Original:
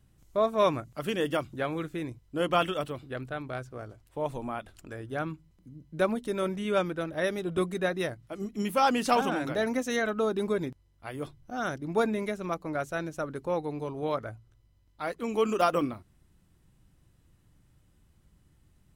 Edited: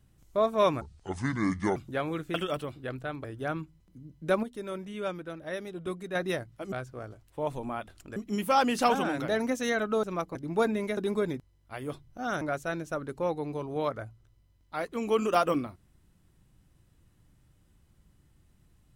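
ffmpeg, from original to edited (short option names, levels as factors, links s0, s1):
-filter_complex "[0:a]asplit=13[s0][s1][s2][s3][s4][s5][s6][s7][s8][s9][s10][s11][s12];[s0]atrim=end=0.814[s13];[s1]atrim=start=0.81:end=1.41,asetpts=PTS-STARTPTS,asetrate=27783,aresample=44100[s14];[s2]atrim=start=1.406:end=1.992[s15];[s3]atrim=start=2.608:end=3.512[s16];[s4]atrim=start=4.948:end=6.142[s17];[s5]atrim=start=6.138:end=7.862,asetpts=PTS-STARTPTS,volume=0.447[s18];[s6]atrim=start=7.858:end=8.432[s19];[s7]atrim=start=3.508:end=4.952[s20];[s8]atrim=start=8.428:end=10.302[s21];[s9]atrim=start=12.358:end=12.682[s22];[s10]atrim=start=11.738:end=12.362[s23];[s11]atrim=start=10.298:end=11.742[s24];[s12]atrim=start=12.678[s25];[s13][s14]acrossfade=d=0.004:c1=hsin:c2=hsin[s26];[s26][s15]acrossfade=d=0.004:c1=hsin:c2=hsin[s27];[s27][s16]acrossfade=d=0.004:c1=hsin:c2=hsin[s28];[s28][s17]acrossfade=d=0.004:c1=hsin:c2=hsin[s29];[s29][s18]acrossfade=d=0.004:c1=hsin:c2=hsin[s30];[s30][s19]acrossfade=d=0.004:c1=hsin:c2=hsin[s31];[s31][s20]acrossfade=d=0.004:c1=hsin:c2=hsin[s32];[s32][s21]acrossfade=d=0.004:c1=hsin:c2=hsin[s33];[s33][s22]acrossfade=d=0.004:c1=hsin:c2=hsin[s34];[s34][s23]acrossfade=d=0.004:c1=hsin:c2=hsin[s35];[s35][s24]acrossfade=d=0.004:c1=hsin:c2=hsin[s36];[s36][s25]acrossfade=d=0.004:c1=hsin:c2=hsin"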